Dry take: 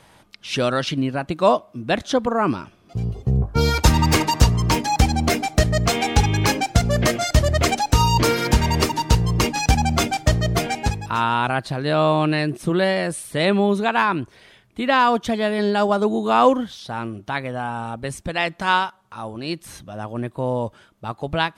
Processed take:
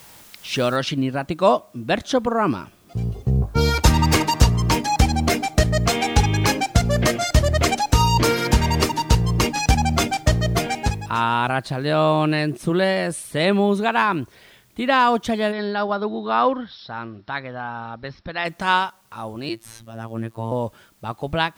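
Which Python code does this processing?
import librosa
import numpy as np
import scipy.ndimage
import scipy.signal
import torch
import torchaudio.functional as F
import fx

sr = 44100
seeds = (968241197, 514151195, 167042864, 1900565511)

y = fx.noise_floor_step(x, sr, seeds[0], at_s=0.76, before_db=-47, after_db=-61, tilt_db=0.0)
y = fx.cheby_ripple(y, sr, hz=5500.0, ripple_db=6, at=(15.51, 18.44), fade=0.02)
y = fx.robotise(y, sr, hz=113.0, at=(19.49, 20.52))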